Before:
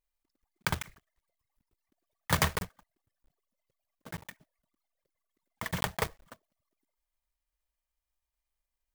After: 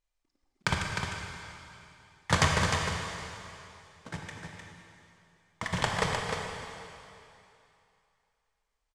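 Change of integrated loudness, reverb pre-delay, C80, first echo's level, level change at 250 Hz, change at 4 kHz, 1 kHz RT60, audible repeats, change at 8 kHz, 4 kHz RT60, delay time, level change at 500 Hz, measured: +2.0 dB, 21 ms, 0.5 dB, −6.0 dB, +4.5 dB, +5.5 dB, 2.8 s, 1, +3.5 dB, 2.7 s, 306 ms, +5.5 dB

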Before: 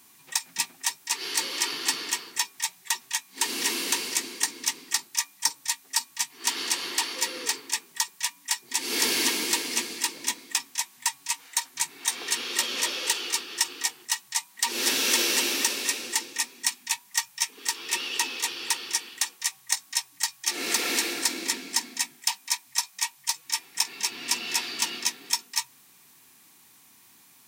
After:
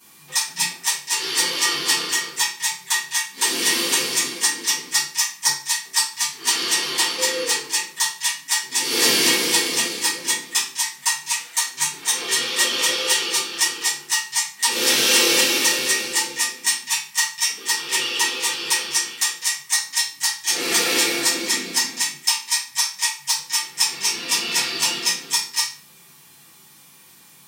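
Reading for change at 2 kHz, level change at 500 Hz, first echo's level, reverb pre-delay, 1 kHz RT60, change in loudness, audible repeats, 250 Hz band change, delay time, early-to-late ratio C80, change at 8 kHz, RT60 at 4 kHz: +8.0 dB, +10.0 dB, no echo audible, 6 ms, 0.40 s, +7.5 dB, no echo audible, +7.0 dB, no echo audible, 11.5 dB, +7.0 dB, 0.35 s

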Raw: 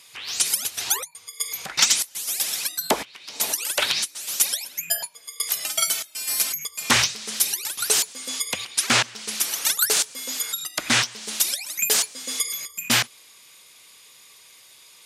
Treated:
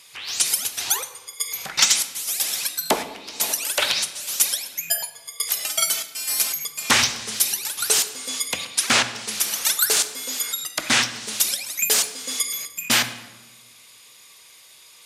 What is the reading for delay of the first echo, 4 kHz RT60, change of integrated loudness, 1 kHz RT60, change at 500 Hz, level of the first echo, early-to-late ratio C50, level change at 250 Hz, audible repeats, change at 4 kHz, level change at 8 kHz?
no echo audible, 0.80 s, +1.5 dB, 1.1 s, +1.5 dB, no echo audible, 12.0 dB, 0.0 dB, no echo audible, +1.5 dB, +1.0 dB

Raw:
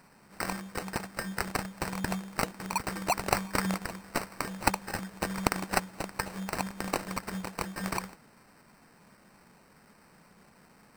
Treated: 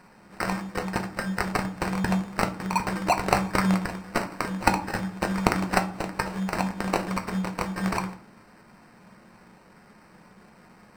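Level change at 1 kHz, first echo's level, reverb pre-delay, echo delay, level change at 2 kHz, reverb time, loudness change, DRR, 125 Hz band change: +6.0 dB, no echo audible, 6 ms, no echo audible, +5.0 dB, 0.45 s, +6.0 dB, 5.5 dB, +8.5 dB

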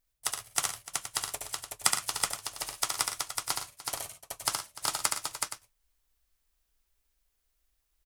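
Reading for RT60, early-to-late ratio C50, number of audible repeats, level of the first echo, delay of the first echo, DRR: no reverb audible, no reverb audible, 5, −4.5 dB, 70 ms, no reverb audible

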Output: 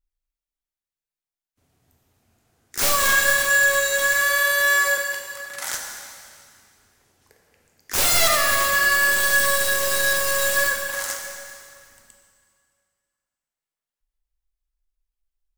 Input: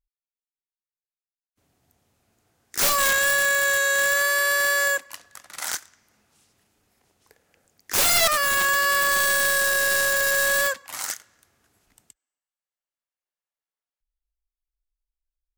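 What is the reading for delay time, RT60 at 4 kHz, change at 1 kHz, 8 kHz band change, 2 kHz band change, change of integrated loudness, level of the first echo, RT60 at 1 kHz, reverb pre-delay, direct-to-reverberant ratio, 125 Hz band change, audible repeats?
no echo audible, 2.1 s, +1.0 dB, +1.5 dB, +2.0 dB, +1.5 dB, no echo audible, 2.3 s, 4 ms, 1.0 dB, +4.5 dB, no echo audible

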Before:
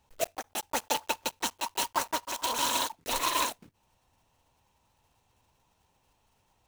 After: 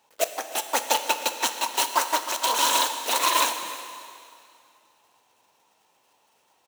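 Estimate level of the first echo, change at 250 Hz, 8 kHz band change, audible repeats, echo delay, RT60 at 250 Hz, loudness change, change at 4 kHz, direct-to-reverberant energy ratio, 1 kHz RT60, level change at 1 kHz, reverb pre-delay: −18.0 dB, +2.0 dB, +7.0 dB, 1, 310 ms, 2.5 s, +7.0 dB, +7.0 dB, 7.5 dB, 2.5 s, +7.0 dB, 7 ms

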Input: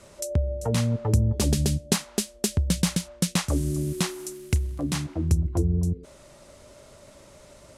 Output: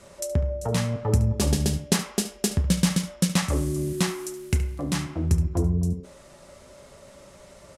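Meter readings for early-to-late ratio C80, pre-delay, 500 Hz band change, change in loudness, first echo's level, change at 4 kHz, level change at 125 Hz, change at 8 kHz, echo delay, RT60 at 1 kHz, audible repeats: 13.0 dB, 3 ms, +2.0 dB, +0.5 dB, −12.0 dB, +0.5 dB, 0.0 dB, 0.0 dB, 72 ms, 0.65 s, 1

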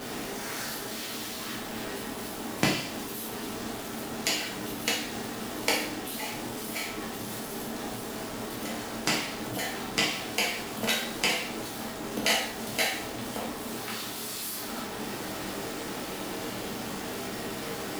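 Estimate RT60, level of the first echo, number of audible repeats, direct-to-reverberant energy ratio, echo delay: 0.55 s, no echo audible, no echo audible, −3.5 dB, no echo audible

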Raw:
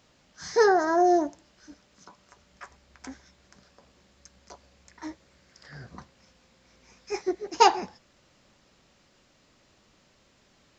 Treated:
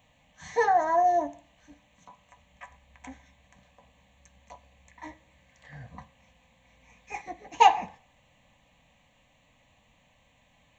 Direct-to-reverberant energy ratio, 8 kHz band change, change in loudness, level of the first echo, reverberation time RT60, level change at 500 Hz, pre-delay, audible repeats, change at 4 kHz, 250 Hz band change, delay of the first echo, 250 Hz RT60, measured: 8.0 dB, can't be measured, −1.0 dB, no echo audible, 0.50 s, −4.5 dB, 3 ms, no echo audible, −4.0 dB, −13.0 dB, no echo audible, 0.45 s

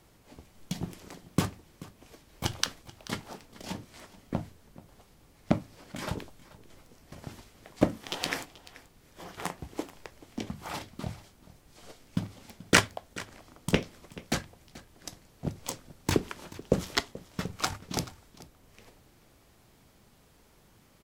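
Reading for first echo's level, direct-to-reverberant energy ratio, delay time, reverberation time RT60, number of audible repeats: −19.0 dB, no reverb audible, 433 ms, no reverb audible, 1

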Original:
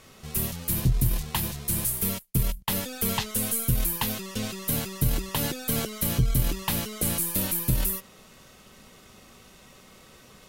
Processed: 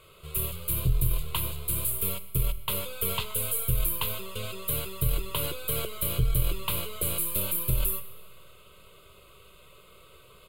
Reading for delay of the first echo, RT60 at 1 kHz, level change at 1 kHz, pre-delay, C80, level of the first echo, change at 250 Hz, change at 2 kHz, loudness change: 129 ms, 1.4 s, −3.5 dB, 5 ms, 14.5 dB, −22.0 dB, −9.5 dB, −3.5 dB, −2.0 dB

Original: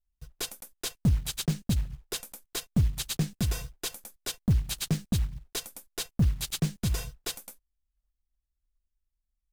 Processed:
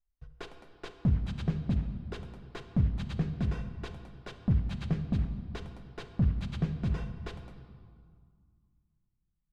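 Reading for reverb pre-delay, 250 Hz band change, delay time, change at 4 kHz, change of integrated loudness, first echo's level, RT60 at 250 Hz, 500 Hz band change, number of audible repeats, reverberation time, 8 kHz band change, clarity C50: 39 ms, −1.5 dB, no echo audible, −14.5 dB, −2.0 dB, no echo audible, 2.7 s, −1.5 dB, no echo audible, 2.0 s, below −25 dB, 9.5 dB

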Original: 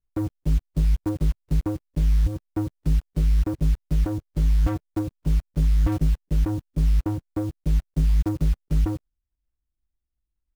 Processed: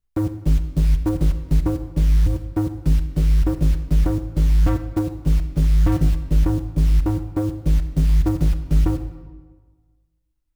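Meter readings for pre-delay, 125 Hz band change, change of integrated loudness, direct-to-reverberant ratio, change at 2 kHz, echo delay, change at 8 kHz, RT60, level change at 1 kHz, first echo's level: 31 ms, +4.5 dB, +4.5 dB, 9.0 dB, +5.0 dB, no echo audible, can't be measured, 1.4 s, +5.0 dB, no echo audible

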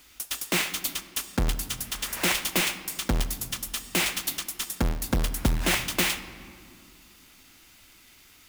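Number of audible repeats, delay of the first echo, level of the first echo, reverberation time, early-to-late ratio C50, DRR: no echo audible, no echo audible, no echo audible, 2.3 s, 13.0 dB, 11.5 dB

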